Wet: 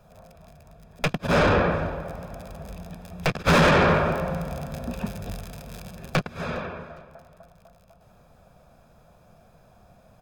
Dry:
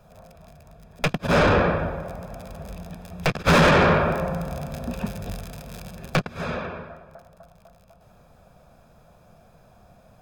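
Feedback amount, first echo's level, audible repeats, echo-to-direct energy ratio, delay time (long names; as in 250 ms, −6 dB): 30%, −22.0 dB, 2, −21.5 dB, 410 ms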